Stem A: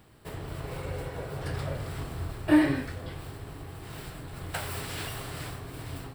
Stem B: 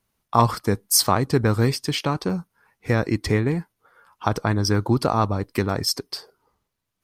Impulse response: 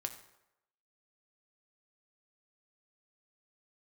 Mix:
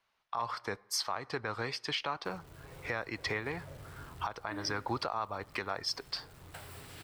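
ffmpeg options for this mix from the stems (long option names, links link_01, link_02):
-filter_complex "[0:a]acrusher=bits=8:dc=4:mix=0:aa=0.000001,adelay=2000,volume=-13.5dB[link_01];[1:a]acrossover=split=590 4800:gain=0.112 1 0.0708[link_02][link_03][link_04];[link_02][link_03][link_04]amix=inputs=3:normalize=0,volume=1.5dB,asplit=2[link_05][link_06];[link_06]volume=-16dB[link_07];[2:a]atrim=start_sample=2205[link_08];[link_07][link_08]afir=irnorm=-1:irlink=0[link_09];[link_01][link_05][link_09]amix=inputs=3:normalize=0,alimiter=limit=-22.5dB:level=0:latency=1:release=487"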